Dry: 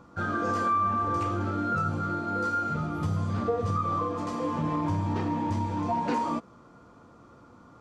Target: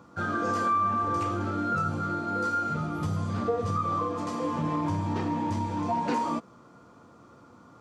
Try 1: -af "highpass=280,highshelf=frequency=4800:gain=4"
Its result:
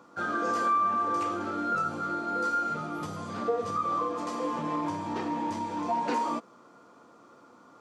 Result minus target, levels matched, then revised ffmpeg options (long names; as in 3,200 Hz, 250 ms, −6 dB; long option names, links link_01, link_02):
125 Hz band −11.5 dB
-af "highpass=86,highshelf=frequency=4800:gain=4"